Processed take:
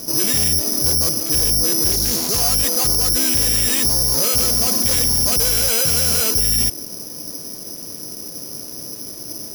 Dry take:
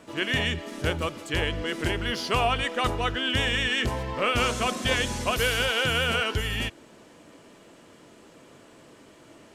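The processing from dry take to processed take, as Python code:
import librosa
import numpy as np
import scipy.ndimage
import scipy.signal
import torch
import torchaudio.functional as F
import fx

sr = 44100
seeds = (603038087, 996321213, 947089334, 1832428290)

p1 = fx.tilt_shelf(x, sr, db=8.0, hz=760.0)
p2 = fx.over_compress(p1, sr, threshold_db=-28.0, ratio=-1.0)
p3 = p1 + F.gain(torch.from_numpy(p2), -2.0).numpy()
p4 = 10.0 ** (-23.0 / 20.0) * np.tanh(p3 / 10.0 ** (-23.0 / 20.0))
p5 = (np.kron(p4[::8], np.eye(8)[0]) * 8)[:len(p4)]
y = fx.doppler_dist(p5, sr, depth_ms=0.23, at=(1.92, 2.4))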